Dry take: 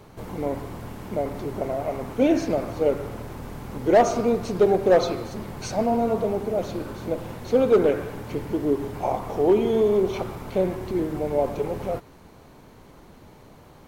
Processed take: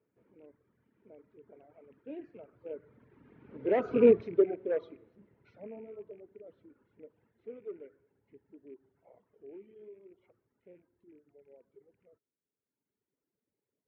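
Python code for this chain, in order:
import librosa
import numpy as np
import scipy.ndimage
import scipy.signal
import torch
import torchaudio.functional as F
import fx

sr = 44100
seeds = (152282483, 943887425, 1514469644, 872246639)

y = fx.rattle_buzz(x, sr, strikes_db=-27.0, level_db=-27.0)
y = fx.doppler_pass(y, sr, speed_mps=19, closest_m=2.2, pass_at_s=4.08)
y = fx.cabinet(y, sr, low_hz=130.0, low_slope=12, high_hz=2500.0, hz=(160.0, 290.0, 430.0, 770.0, 1100.0), db=(-3, 3, 7, -10, -8))
y = fx.dereverb_blind(y, sr, rt60_s=1.7)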